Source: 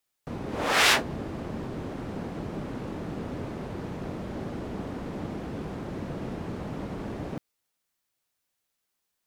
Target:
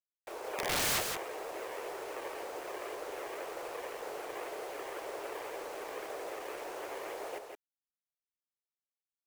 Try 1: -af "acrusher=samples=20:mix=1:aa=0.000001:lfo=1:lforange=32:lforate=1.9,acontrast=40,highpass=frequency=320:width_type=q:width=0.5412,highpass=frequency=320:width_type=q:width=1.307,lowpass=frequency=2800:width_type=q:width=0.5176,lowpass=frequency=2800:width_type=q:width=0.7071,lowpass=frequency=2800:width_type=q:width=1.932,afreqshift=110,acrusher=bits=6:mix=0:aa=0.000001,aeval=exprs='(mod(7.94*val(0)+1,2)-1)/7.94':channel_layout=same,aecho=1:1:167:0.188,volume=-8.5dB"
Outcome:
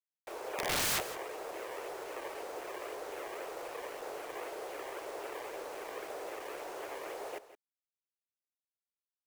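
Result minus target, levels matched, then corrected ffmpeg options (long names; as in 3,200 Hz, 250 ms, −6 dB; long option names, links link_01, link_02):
echo-to-direct −9 dB
-af "acrusher=samples=20:mix=1:aa=0.000001:lfo=1:lforange=32:lforate=1.9,acontrast=40,highpass=frequency=320:width_type=q:width=0.5412,highpass=frequency=320:width_type=q:width=1.307,lowpass=frequency=2800:width_type=q:width=0.5176,lowpass=frequency=2800:width_type=q:width=0.7071,lowpass=frequency=2800:width_type=q:width=1.932,afreqshift=110,acrusher=bits=6:mix=0:aa=0.000001,aeval=exprs='(mod(7.94*val(0)+1,2)-1)/7.94':channel_layout=same,aecho=1:1:167:0.531,volume=-8.5dB"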